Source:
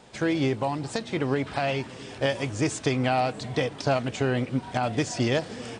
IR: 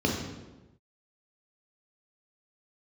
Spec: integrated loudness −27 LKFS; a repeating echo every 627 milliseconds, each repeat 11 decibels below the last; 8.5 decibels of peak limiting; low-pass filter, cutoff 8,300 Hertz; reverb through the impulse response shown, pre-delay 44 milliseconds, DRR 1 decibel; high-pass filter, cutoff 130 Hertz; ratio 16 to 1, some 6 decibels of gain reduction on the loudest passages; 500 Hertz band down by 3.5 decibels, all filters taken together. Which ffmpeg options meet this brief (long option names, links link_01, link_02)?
-filter_complex "[0:a]highpass=130,lowpass=8300,equalizer=frequency=500:width_type=o:gain=-4.5,acompressor=threshold=-27dB:ratio=16,alimiter=limit=-22dB:level=0:latency=1,aecho=1:1:627|1254|1881:0.282|0.0789|0.0221,asplit=2[link_01][link_02];[1:a]atrim=start_sample=2205,adelay=44[link_03];[link_02][link_03]afir=irnorm=-1:irlink=0,volume=-13dB[link_04];[link_01][link_04]amix=inputs=2:normalize=0,volume=-0.5dB"